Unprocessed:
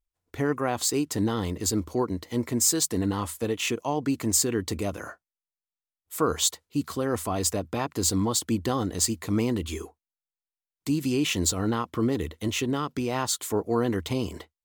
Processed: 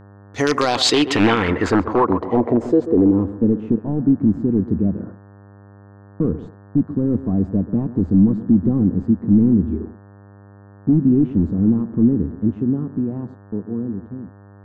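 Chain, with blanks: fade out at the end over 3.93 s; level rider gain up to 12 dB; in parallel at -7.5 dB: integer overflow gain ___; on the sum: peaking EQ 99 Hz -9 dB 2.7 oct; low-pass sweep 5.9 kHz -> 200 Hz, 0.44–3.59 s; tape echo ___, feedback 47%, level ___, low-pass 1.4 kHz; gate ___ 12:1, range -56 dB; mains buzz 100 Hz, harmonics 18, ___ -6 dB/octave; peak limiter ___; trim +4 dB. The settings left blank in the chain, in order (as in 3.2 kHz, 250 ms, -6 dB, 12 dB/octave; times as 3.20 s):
9.5 dB, 134 ms, -13.5 dB, -38 dBFS, -48 dBFS, -10.5 dBFS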